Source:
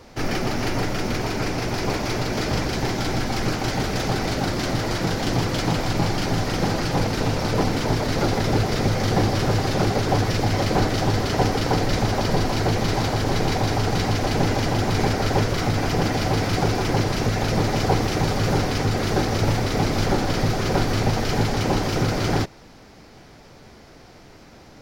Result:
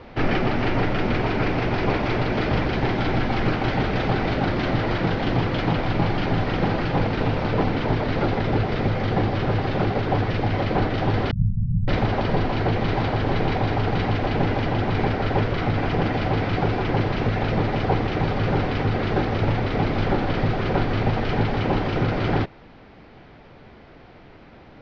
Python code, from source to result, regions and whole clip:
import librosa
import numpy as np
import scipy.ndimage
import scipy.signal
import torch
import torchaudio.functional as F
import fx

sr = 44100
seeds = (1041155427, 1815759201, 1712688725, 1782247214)

y = fx.chain(x, sr, fx.envelope_sharpen(power=3.0),
    fx.brickwall_bandstop(low_hz=220.0, high_hz=5200.0), at=(11.31, 11.88))
y = scipy.signal.sosfilt(scipy.signal.butter(4, 3400.0, 'lowpass', fs=sr, output='sos'), y)
y = fx.rider(y, sr, range_db=10, speed_s=0.5)